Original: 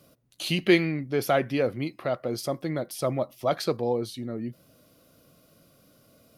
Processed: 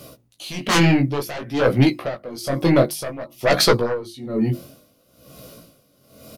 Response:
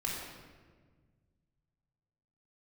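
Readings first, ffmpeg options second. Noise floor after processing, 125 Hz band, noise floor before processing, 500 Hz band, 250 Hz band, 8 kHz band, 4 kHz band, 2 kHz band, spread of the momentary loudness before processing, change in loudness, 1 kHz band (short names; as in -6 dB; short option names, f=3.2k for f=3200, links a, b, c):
-60 dBFS, +11.0 dB, -61 dBFS, +5.0 dB, +8.0 dB, +11.0 dB, +9.5 dB, +7.0 dB, 12 LU, +7.5 dB, +7.0 dB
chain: -filter_complex "[0:a]equalizer=f=1.6k:w=1.8:g=-4,aeval=exprs='0.447*sin(PI/2*5.62*val(0)/0.447)':c=same,bandreject=f=50:t=h:w=6,bandreject=f=100:t=h:w=6,bandreject=f=150:t=h:w=6,bandreject=f=200:t=h:w=6,bandreject=f=250:t=h:w=6,bandreject=f=300:t=h:w=6,bandreject=f=350:t=h:w=6,asplit=2[a][b];[b]adelay=14,volume=-14dB[c];[a][c]amix=inputs=2:normalize=0,flanger=delay=15.5:depth=7.8:speed=0.56,aeval=exprs='val(0)*pow(10,-19*(0.5-0.5*cos(2*PI*1.1*n/s))/20)':c=same,volume=2.5dB"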